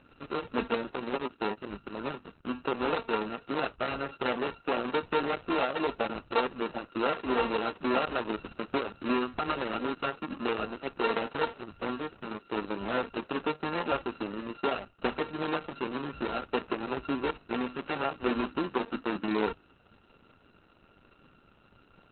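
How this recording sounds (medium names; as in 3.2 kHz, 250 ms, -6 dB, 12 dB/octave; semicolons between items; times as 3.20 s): a buzz of ramps at a fixed pitch in blocks of 32 samples; Opus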